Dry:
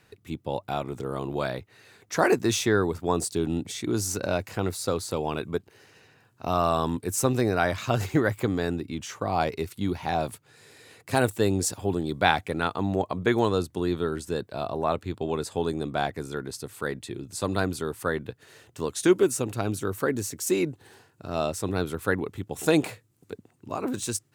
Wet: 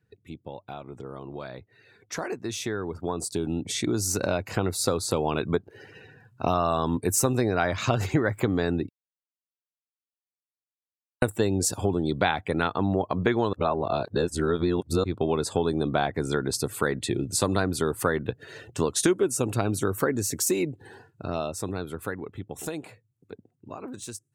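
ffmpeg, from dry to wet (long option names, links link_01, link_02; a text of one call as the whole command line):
ffmpeg -i in.wav -filter_complex "[0:a]asplit=5[link_01][link_02][link_03][link_04][link_05];[link_01]atrim=end=8.89,asetpts=PTS-STARTPTS,afade=type=out:start_time=8.886:duration=0.004:curve=hsin[link_06];[link_02]atrim=start=8.89:end=11.22,asetpts=PTS-STARTPTS,volume=0[link_07];[link_03]atrim=start=11.22:end=13.532,asetpts=PTS-STARTPTS,afade=type=in:duration=0.004:curve=hsin[link_08];[link_04]atrim=start=13.528:end=15.042,asetpts=PTS-STARTPTS,areverse[link_09];[link_05]atrim=start=15.038[link_10];[link_06][link_07][link_08]concat=n=3:v=0:a=1[link_11];[link_11][link_09]acrossfade=duration=0.004:curve1=hsin:curve2=hsin[link_12];[link_12][link_10]acrossfade=duration=0.004:curve1=hsin:curve2=hsin,acompressor=threshold=-32dB:ratio=4,afftdn=noise_reduction=19:noise_floor=-55,dynaudnorm=framelen=220:gausssize=31:maxgain=15dB,volume=-3.5dB" out.wav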